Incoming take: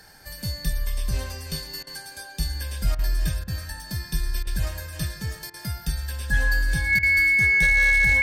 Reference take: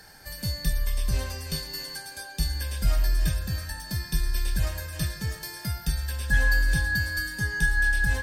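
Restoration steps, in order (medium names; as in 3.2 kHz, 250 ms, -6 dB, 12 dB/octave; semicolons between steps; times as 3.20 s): clip repair -13 dBFS; band-stop 2.2 kHz, Q 30; interpolate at 1.83/2.95/3.44/4.43/5.50/6.99 s, 38 ms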